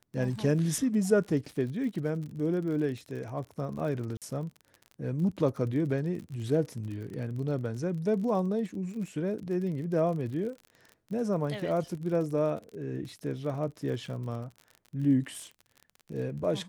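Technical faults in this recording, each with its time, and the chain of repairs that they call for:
crackle 44 per s -38 dBFS
4.17–4.22 s: dropout 47 ms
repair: de-click; interpolate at 4.17 s, 47 ms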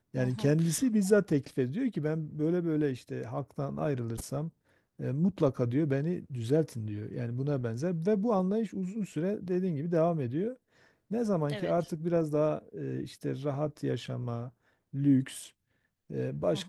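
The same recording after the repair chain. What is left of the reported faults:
nothing left

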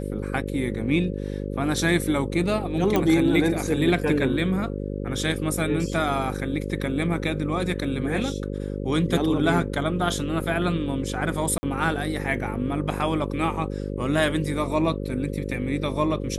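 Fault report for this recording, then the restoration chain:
buzz 50 Hz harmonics 11 -30 dBFS
2.96 s: pop -9 dBFS
11.58–11.63 s: dropout 50 ms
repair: de-click; de-hum 50 Hz, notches 11; interpolate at 11.58 s, 50 ms

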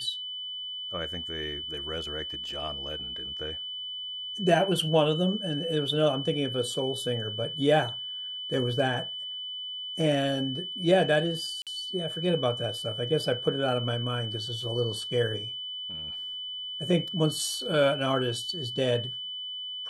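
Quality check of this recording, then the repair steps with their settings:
whine 3 kHz -34 dBFS
11.62–11.67 s: dropout 47 ms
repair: band-stop 3 kHz, Q 30; interpolate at 11.62 s, 47 ms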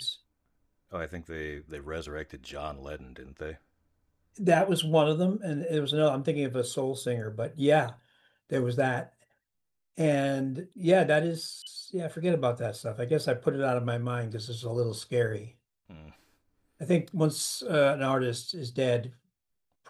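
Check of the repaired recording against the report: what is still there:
nothing left

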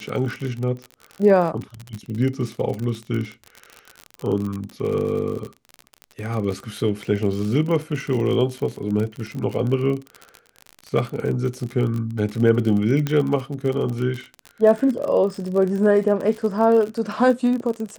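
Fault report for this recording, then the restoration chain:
crackle 44 per s -26 dBFS
13.07 s: pop -10 dBFS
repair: de-click

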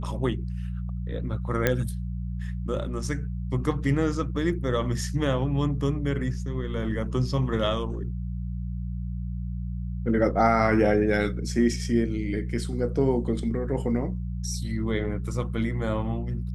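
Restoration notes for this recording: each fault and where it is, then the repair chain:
hum 60 Hz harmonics 3 -31 dBFS
1.67 s: pop -8 dBFS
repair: de-click; de-hum 60 Hz, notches 3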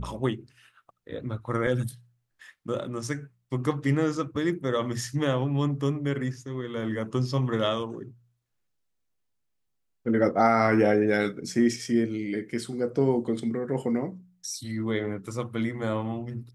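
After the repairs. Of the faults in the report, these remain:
nothing left

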